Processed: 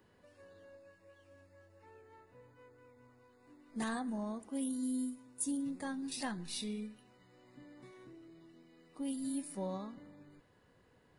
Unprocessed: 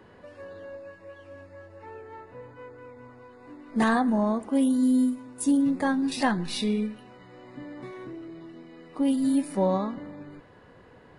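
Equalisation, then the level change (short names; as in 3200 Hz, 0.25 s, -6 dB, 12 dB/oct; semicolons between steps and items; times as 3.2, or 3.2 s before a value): pre-emphasis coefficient 0.8; low shelf 350 Hz +5.5 dB; -4.5 dB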